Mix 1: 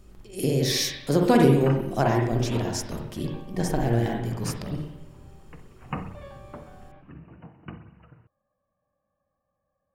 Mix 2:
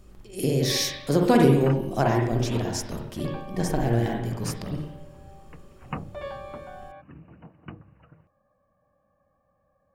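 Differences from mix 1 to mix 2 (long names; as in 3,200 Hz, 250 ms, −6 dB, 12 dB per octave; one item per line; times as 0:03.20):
first sound +9.5 dB
second sound: send off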